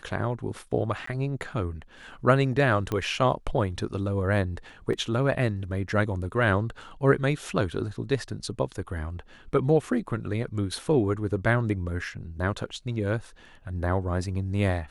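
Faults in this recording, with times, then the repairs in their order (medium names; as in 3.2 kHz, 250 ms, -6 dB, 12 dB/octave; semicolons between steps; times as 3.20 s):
1.06–1.07 s: dropout 14 ms
2.92 s: pop -16 dBFS
4.93 s: dropout 3.6 ms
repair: de-click; interpolate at 1.06 s, 14 ms; interpolate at 4.93 s, 3.6 ms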